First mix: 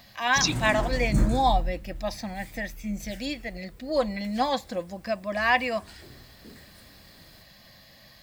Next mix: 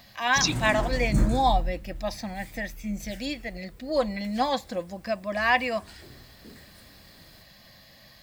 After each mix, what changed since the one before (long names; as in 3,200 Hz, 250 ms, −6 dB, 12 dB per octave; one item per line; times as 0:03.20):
nothing changed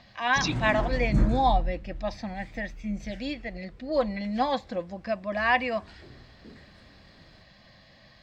master: add high-frequency loss of the air 150 metres